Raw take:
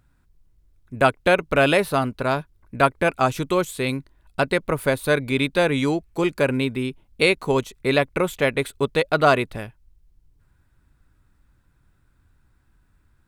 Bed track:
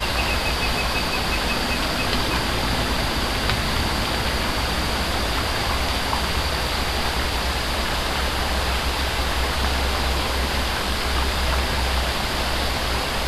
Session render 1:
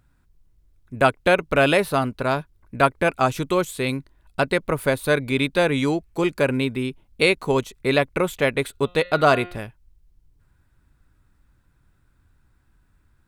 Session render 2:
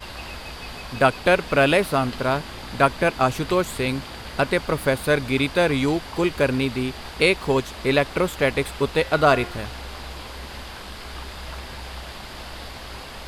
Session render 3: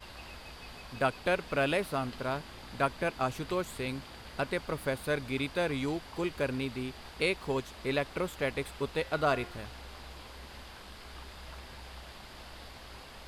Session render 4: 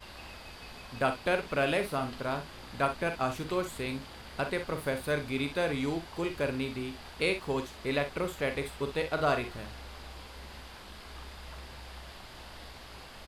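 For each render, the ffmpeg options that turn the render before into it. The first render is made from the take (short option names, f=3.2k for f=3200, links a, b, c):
-filter_complex "[0:a]asettb=1/sr,asplit=3[a][b][c];[a]atrim=end=8.714[d];[b]atrim=start=8.71:end=9.6,asetpts=PTS-STARTPTS,afade=t=in:d=0.004:c=qsin,afade=t=out:st=0.886:d=0.004:c=qsin,bandreject=f=177.5:t=h:w=4,bandreject=f=355:t=h:w=4,bandreject=f=532.5:t=h:w=4,bandreject=f=710:t=h:w=4,bandreject=f=887.5:t=h:w=4,bandreject=f=1.065k:t=h:w=4,bandreject=f=1.2425k:t=h:w=4,bandreject=f=1.42k:t=h:w=4,bandreject=f=1.5975k:t=h:w=4,bandreject=f=1.775k:t=h:w=4,bandreject=f=1.9525k:t=h:w=4,bandreject=f=2.13k:t=h:w=4,bandreject=f=2.3075k:t=h:w=4,bandreject=f=2.485k:t=h:w=4,bandreject=f=2.6625k:t=h:w=4,bandreject=f=2.84k:t=h:w=4,bandreject=f=3.0175k:t=h:w=4,bandreject=f=3.195k:t=h:w=4,bandreject=f=3.3725k:t=h:w=4,bandreject=f=3.55k:t=h:w=4,bandreject=f=3.7275k:t=h:w=4,bandreject=f=3.905k:t=h:w=4,bandreject=f=4.0825k:t=h:w=4,bandreject=f=4.26k:t=h:w=4,bandreject=f=4.4375k:t=h:w=4,bandreject=f=4.615k:t=h:w=4[e];[c]atrim=start=9.596[f];[d][e]acrossfade=d=0.004:c1=hsin:c2=qsin[g];[g][f]acrossfade=d=0.004:c1=qsin:c2=hsin"
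-filter_complex "[1:a]volume=-13.5dB[a];[0:a][a]amix=inputs=2:normalize=0"
-af "volume=-11.5dB"
-af "aecho=1:1:42|61:0.335|0.266"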